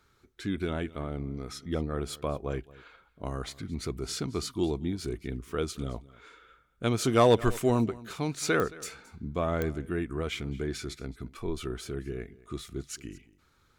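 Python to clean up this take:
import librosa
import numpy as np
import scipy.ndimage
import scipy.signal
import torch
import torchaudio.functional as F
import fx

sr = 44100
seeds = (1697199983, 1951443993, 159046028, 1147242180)

y = fx.fix_declip(x, sr, threshold_db=-12.5)
y = fx.fix_declick_ar(y, sr, threshold=10.0)
y = fx.fix_echo_inverse(y, sr, delay_ms=220, level_db=-20.5)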